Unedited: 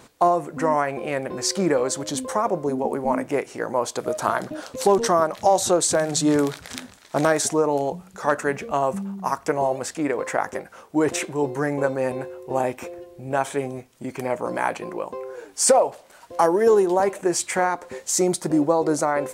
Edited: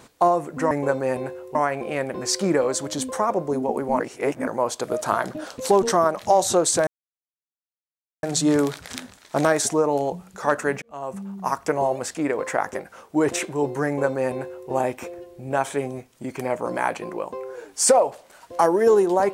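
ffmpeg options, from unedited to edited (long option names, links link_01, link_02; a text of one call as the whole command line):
ffmpeg -i in.wav -filter_complex "[0:a]asplit=7[link_01][link_02][link_03][link_04][link_05][link_06][link_07];[link_01]atrim=end=0.712[link_08];[link_02]atrim=start=11.658:end=12.502[link_09];[link_03]atrim=start=0.708:end=3.162[link_10];[link_04]atrim=start=3.158:end=3.632,asetpts=PTS-STARTPTS,areverse[link_11];[link_05]atrim=start=3.628:end=6.03,asetpts=PTS-STARTPTS,afade=type=out:start_time=2.398:duration=0.004:curve=hsin,apad=pad_dur=1.36[link_12];[link_06]atrim=start=6.03:end=8.62,asetpts=PTS-STARTPTS,afade=type=in:duration=0.004:curve=hsin,afade=type=out:start_time=2.586:duration=0.004:curve=hsin[link_13];[link_07]atrim=start=8.62,asetpts=PTS-STARTPTS,afade=type=in:duration=0.66[link_14];[link_08][link_09]acrossfade=duration=0.004:curve1=hsin:curve2=hsin[link_15];[link_15][link_10]acrossfade=duration=0.004:curve1=hsin:curve2=hsin[link_16];[link_16][link_11]acrossfade=duration=0.004:curve1=hsin:curve2=hsin[link_17];[link_12][link_13][link_14]concat=n=3:v=0:a=1[link_18];[link_17][link_18]acrossfade=duration=0.004:curve1=hsin:curve2=hsin" out.wav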